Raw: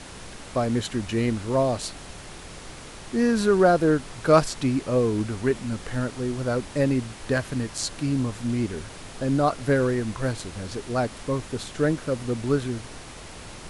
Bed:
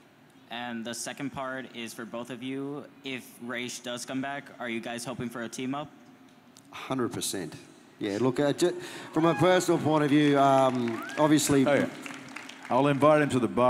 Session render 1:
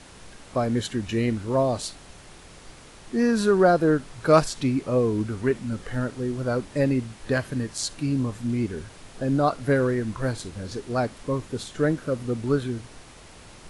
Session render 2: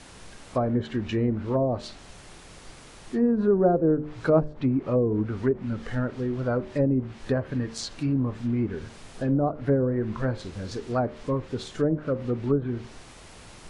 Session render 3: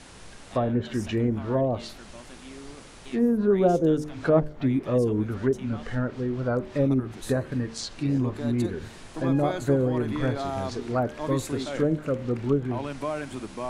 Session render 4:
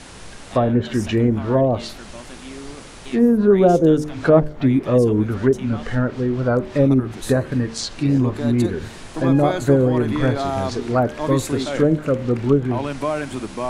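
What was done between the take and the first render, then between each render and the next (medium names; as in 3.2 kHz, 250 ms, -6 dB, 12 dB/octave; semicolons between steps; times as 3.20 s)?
noise print and reduce 6 dB
low-pass that closes with the level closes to 590 Hz, closed at -18 dBFS; de-hum 75.47 Hz, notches 8
add bed -10 dB
trim +7.5 dB; peak limiter -3 dBFS, peak gain reduction 1.5 dB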